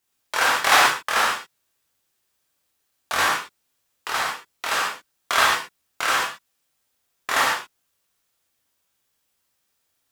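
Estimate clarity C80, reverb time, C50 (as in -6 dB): 4.0 dB, no single decay rate, 0.5 dB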